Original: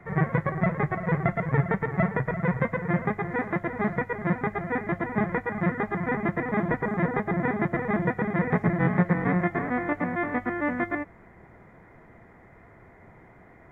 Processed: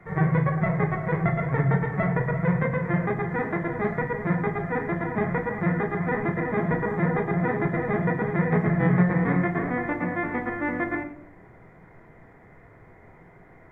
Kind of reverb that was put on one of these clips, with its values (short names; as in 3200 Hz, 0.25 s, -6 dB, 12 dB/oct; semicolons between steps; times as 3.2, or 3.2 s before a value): shoebox room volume 77 m³, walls mixed, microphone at 0.56 m; gain -1.5 dB